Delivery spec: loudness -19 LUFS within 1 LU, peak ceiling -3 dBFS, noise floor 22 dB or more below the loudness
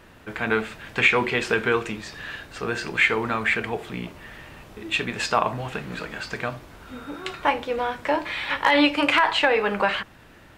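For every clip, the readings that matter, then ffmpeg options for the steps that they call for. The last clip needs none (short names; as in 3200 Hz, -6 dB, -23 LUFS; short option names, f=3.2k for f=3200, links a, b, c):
loudness -23.5 LUFS; peak -6.5 dBFS; loudness target -19.0 LUFS
-> -af "volume=4.5dB,alimiter=limit=-3dB:level=0:latency=1"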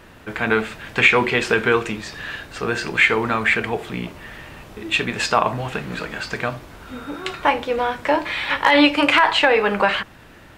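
loudness -19.0 LUFS; peak -3.0 dBFS; noise floor -45 dBFS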